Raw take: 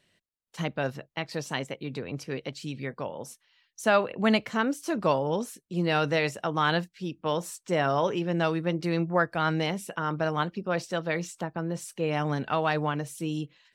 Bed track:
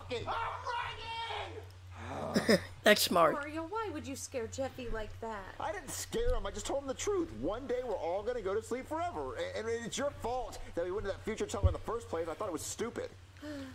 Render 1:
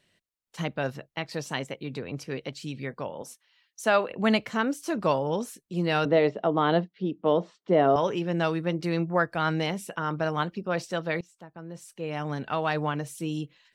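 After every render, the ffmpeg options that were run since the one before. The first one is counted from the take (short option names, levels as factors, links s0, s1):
-filter_complex "[0:a]asettb=1/sr,asplit=3[s0][s1][s2];[s0]atrim=end=3.224[s3];[s1]atrim=start=3.22:end=4.1,asetpts=PTS-STARTPTS,afade=t=in:d=0.004:c=qsin,afade=t=out:st=0.876:d=0.004:c=qsin,highpass=220[s4];[s2]atrim=start=4.096[s5];[s3][s4]acrossfade=d=0.004:c1=hsin:c2=qsin[s6];[s6][s5]acrossfade=d=0.004:c1=qsin:c2=hsin,asettb=1/sr,asplit=3[s7][s8][s9];[s7]atrim=end=6.054[s10];[s8]atrim=start=6.05:end=7.96,asetpts=PTS-STARTPTS,afade=t=in:d=0.004:c=qsin,afade=t=out:st=1.906:d=0.004:c=qsin,highpass=130,equalizer=f=200:t=q:w=4:g=7,equalizer=f=290:t=q:w=4:g=6,equalizer=f=420:t=q:w=4:g=9,equalizer=f=660:t=q:w=4:g=7,equalizer=f=1600:t=q:w=4:g=-6,equalizer=f=2500:t=q:w=4:g=-8,lowpass=f=3500:w=0.5412,lowpass=f=3500:w=1.3066[s11];[s9]atrim=start=7.956[s12];[s10][s11]acrossfade=d=0.004:c1=hsin:c2=qsin[s13];[s13][s12]acrossfade=d=0.004:c1=qsin:c2=hsin,asplit=2[s14][s15];[s14]atrim=end=11.21,asetpts=PTS-STARTPTS,afade=t=out:st=11.206:d=0.004:c=hsin:silence=0.0841395[s16];[s15]atrim=start=11.21,asetpts=PTS-STARTPTS,afade=t=in:d=1.66:silence=0.0841395[s17];[s16][s17]concat=n=2:v=0:a=1"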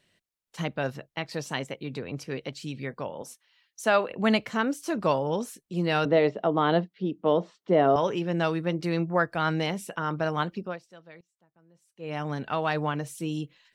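-filter_complex "[0:a]asplit=3[s0][s1][s2];[s0]atrim=end=10.79,asetpts=PTS-STARTPTS,afade=t=out:st=10.62:d=0.17:silence=0.1[s3];[s1]atrim=start=10.79:end=11.95,asetpts=PTS-STARTPTS,volume=0.1[s4];[s2]atrim=start=11.95,asetpts=PTS-STARTPTS,afade=t=in:d=0.17:silence=0.1[s5];[s3][s4][s5]concat=n=3:v=0:a=1"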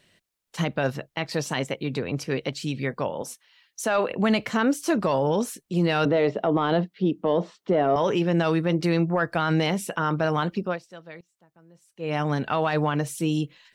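-af "acontrast=72,alimiter=limit=0.211:level=0:latency=1:release=30"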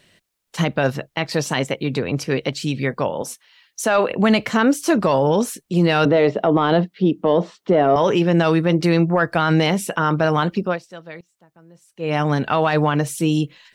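-af "volume=2"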